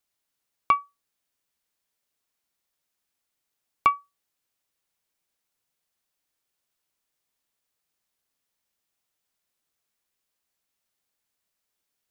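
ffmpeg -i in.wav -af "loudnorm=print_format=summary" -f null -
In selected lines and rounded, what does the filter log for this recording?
Input Integrated:    -25.8 LUFS
Input True Peak:      -7.9 dBTP
Input LRA:             0.5 LU
Input Threshold:     -37.2 LUFS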